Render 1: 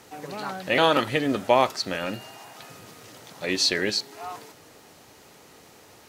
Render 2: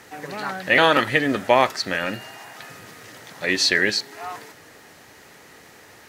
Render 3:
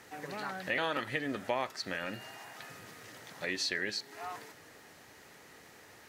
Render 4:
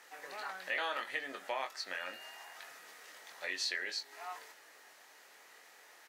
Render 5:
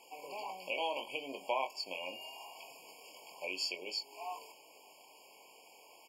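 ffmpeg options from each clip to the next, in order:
-af "equalizer=f=1800:w=2.4:g=9,volume=1.26"
-af "acompressor=threshold=0.0398:ratio=2,volume=0.398"
-filter_complex "[0:a]highpass=620,asplit=2[s0][s1];[s1]adelay=22,volume=0.473[s2];[s0][s2]amix=inputs=2:normalize=0,volume=0.708"
-af "afftfilt=real='re*eq(mod(floor(b*sr/1024/1100),2),0)':imag='im*eq(mod(floor(b*sr/1024/1100),2),0)':win_size=1024:overlap=0.75,volume=1.58"

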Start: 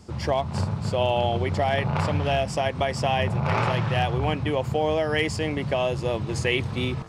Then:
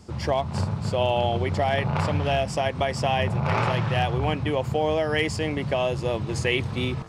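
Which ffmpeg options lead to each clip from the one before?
-af anull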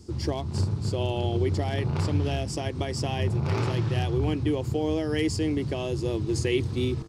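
-af "firequalizer=gain_entry='entry(100,0);entry(180,-7);entry(330,5);entry(570,-12);entry(2500,-10);entry(4600,-1)':delay=0.05:min_phase=1,volume=1.19"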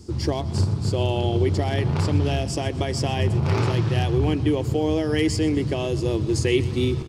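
-af "aecho=1:1:125|250|375|500|625:0.126|0.073|0.0424|0.0246|0.0142,volume=1.68"

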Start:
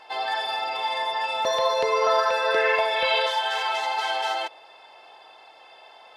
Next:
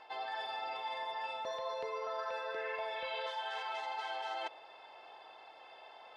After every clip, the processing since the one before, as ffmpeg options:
-af "aemphasis=mode=reproduction:type=50kf,areverse,acompressor=threshold=0.0224:ratio=6,areverse,volume=0.596"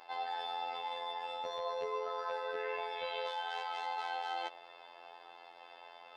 -af "afftfilt=real='hypot(re,im)*cos(PI*b)':imag='0':win_size=2048:overlap=0.75,volume=1.58"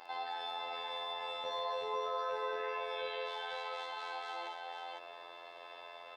-af "alimiter=level_in=1.88:limit=0.0631:level=0:latency=1:release=168,volume=0.531,aecho=1:1:55|501:0.473|0.631,volume=1.33"

